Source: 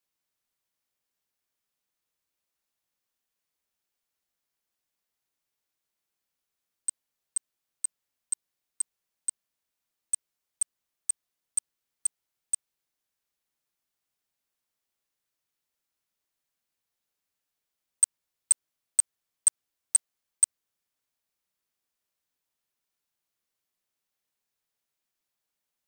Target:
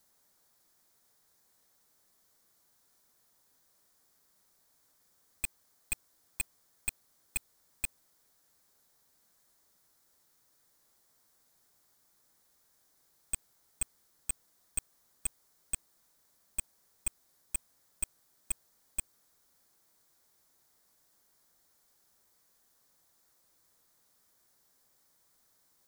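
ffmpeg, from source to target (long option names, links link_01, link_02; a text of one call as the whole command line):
ffmpeg -i in.wav -af "areverse,equalizer=frequency=2700:width=2:gain=-12,aeval=exprs='(mod(7.5*val(0)+1,2)-1)/7.5':channel_layout=same,aeval=exprs='(tanh(178*val(0)+0.45)-tanh(0.45))/178':channel_layout=same,volume=17.5dB" out.wav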